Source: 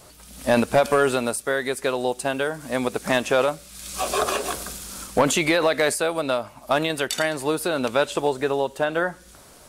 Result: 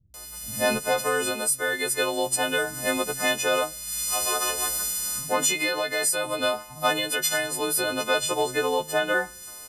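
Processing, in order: frequency quantiser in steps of 3 st; vocal rider within 4 dB 0.5 s; bands offset in time lows, highs 0.14 s, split 170 Hz; gain -5 dB

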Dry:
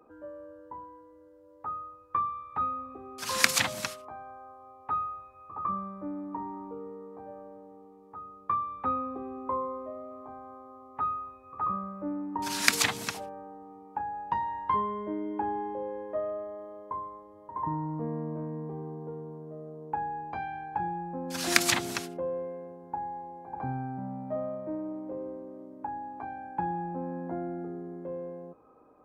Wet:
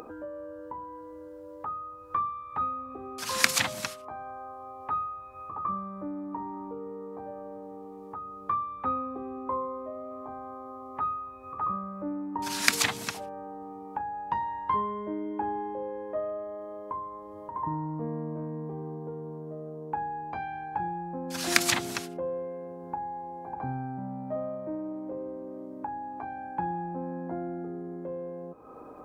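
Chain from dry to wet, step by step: upward compressor, threshold -33 dBFS

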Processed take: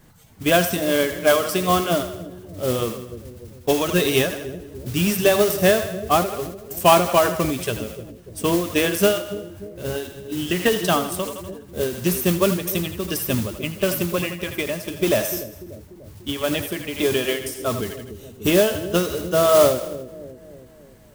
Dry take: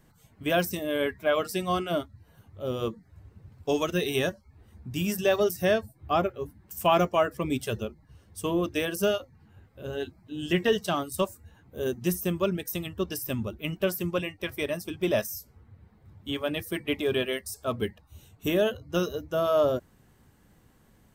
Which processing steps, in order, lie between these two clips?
modulation noise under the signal 12 dB; split-band echo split 490 Hz, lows 0.294 s, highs 81 ms, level -12 dB; ending taper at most 100 dB/s; gain +8.5 dB

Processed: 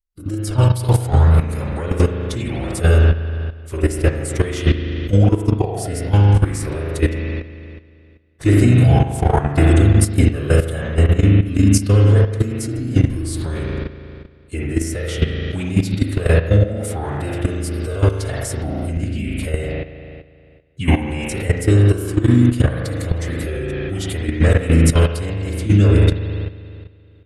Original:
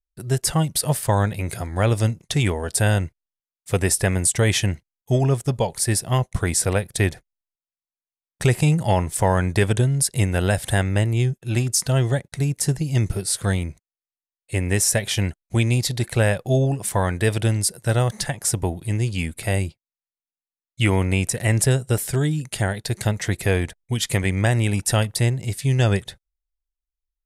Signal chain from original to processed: in parallel at -2 dB: limiter -16.5 dBFS, peak gain reduction 9 dB; on the sum: spring tank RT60 1.9 s, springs 39 ms, chirp 45 ms, DRR -3 dB; formant-preserving pitch shift -4 st; level quantiser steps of 12 dB; low shelf 350 Hz +5 dB; gain -2.5 dB

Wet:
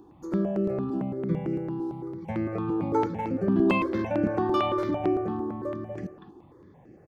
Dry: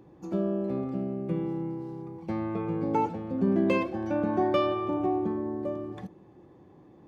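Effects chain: speakerphone echo 0.24 s, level -7 dB; step phaser 8.9 Hz 560–3600 Hz; gain +4.5 dB

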